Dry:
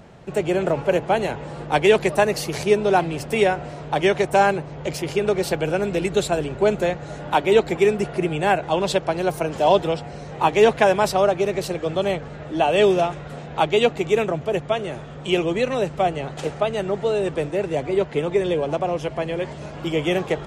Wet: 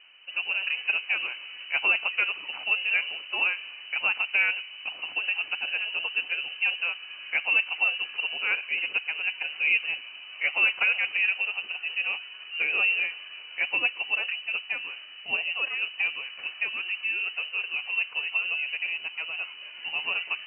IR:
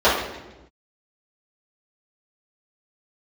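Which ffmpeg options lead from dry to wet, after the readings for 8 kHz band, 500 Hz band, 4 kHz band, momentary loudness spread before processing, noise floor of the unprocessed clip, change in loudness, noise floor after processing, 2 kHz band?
under -40 dB, -29.5 dB, +1.0 dB, 10 LU, -36 dBFS, -5.0 dB, -44 dBFS, +4.5 dB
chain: -filter_complex "[0:a]asplit=2[s0][s1];[1:a]atrim=start_sample=2205,lowpass=2000[s2];[s1][s2]afir=irnorm=-1:irlink=0,volume=0.01[s3];[s0][s3]amix=inputs=2:normalize=0,lowpass=f=2600:t=q:w=0.5098,lowpass=f=2600:t=q:w=0.6013,lowpass=f=2600:t=q:w=0.9,lowpass=f=2600:t=q:w=2.563,afreqshift=-3100,highpass=f=200:p=1,volume=0.376"

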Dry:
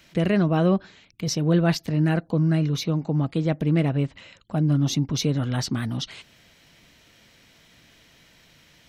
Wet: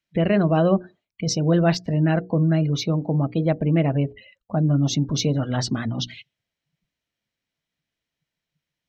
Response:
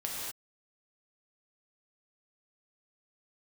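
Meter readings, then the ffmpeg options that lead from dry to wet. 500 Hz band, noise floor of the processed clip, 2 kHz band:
+3.5 dB, under -85 dBFS, +1.0 dB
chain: -filter_complex "[0:a]bandreject=f=60:t=h:w=6,bandreject=f=120:t=h:w=6,bandreject=f=180:t=h:w=6,bandreject=f=240:t=h:w=6,bandreject=f=300:t=h:w=6,bandreject=f=360:t=h:w=6,bandreject=f=420:t=h:w=6,bandreject=f=480:t=h:w=6,afftdn=nr=35:nf=-40,adynamicequalizer=threshold=0.00891:dfrequency=630:dqfactor=2.6:tfrequency=630:tqfactor=2.6:attack=5:release=100:ratio=0.375:range=2.5:mode=boostabove:tftype=bell,asplit=2[s0][s1];[s1]acompressor=threshold=0.0251:ratio=6,volume=0.841[s2];[s0][s2]amix=inputs=2:normalize=0"

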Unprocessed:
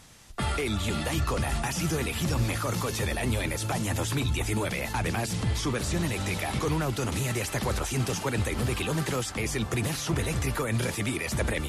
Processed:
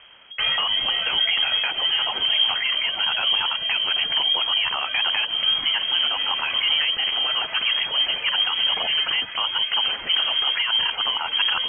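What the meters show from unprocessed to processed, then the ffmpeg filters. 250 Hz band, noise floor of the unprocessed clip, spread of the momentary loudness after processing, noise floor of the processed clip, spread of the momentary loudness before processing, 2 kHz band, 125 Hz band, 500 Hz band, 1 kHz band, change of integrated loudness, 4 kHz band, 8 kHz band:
under -15 dB, -35 dBFS, 3 LU, -34 dBFS, 1 LU, +8.5 dB, under -25 dB, -8.0 dB, +4.0 dB, +9.0 dB, +20.5 dB, under -40 dB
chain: -af "lowpass=f=2800:t=q:w=0.5098,lowpass=f=2800:t=q:w=0.6013,lowpass=f=2800:t=q:w=0.9,lowpass=f=2800:t=q:w=2.563,afreqshift=-3300,volume=2"

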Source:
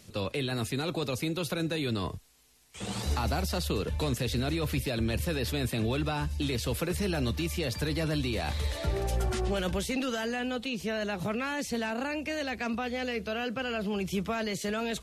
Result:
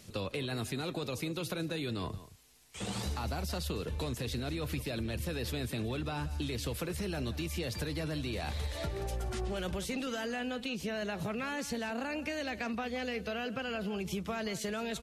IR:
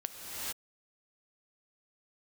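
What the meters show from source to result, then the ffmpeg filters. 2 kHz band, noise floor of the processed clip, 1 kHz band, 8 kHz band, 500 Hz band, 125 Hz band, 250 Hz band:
-4.5 dB, -48 dBFS, -5.0 dB, -4.0 dB, -5.0 dB, -5.5 dB, -5.0 dB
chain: -filter_complex "[0:a]acompressor=threshold=0.0224:ratio=6,asplit=2[s0][s1];[s1]adelay=174.9,volume=0.178,highshelf=f=4000:g=-3.94[s2];[s0][s2]amix=inputs=2:normalize=0"

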